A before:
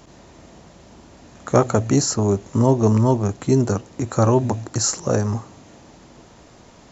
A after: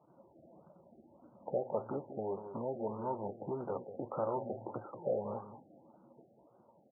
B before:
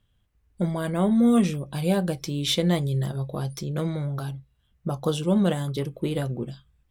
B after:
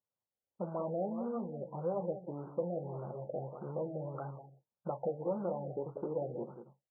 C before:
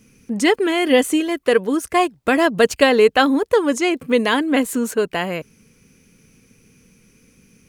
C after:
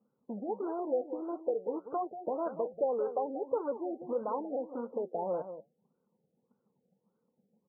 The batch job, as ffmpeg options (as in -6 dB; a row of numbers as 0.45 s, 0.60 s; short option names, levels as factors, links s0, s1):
-filter_complex "[0:a]afftdn=nr=17:nf=-35,acompressor=threshold=0.0447:ratio=6,aresample=11025,acrusher=bits=3:mode=log:mix=0:aa=0.000001,aresample=44100,flanger=delay=5.7:depth=3.5:regen=-76:speed=1.4:shape=triangular,asoftclip=type=tanh:threshold=0.0447,highpass=240,equalizer=f=270:t=q:w=4:g=-6,equalizer=f=540:t=q:w=4:g=8,equalizer=f=880:t=q:w=4:g=8,equalizer=f=1800:t=q:w=4:g=-10,lowpass=f=2100:w=0.5412,lowpass=f=2100:w=1.3066,asplit=2[s0][s1];[s1]aecho=0:1:187:0.299[s2];[s0][s2]amix=inputs=2:normalize=0,afftfilt=real='re*lt(b*sr/1024,790*pow(1600/790,0.5+0.5*sin(2*PI*1.7*pts/sr)))':imag='im*lt(b*sr/1024,790*pow(1600/790,0.5+0.5*sin(2*PI*1.7*pts/sr)))':win_size=1024:overlap=0.75"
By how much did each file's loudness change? -19.5 LU, -13.5 LU, -17.5 LU